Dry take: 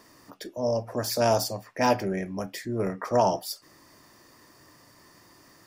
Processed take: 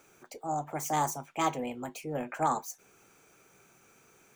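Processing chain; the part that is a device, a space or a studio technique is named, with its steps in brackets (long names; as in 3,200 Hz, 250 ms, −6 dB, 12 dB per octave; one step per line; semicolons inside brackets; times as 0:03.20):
nightcore (speed change +30%)
level −6 dB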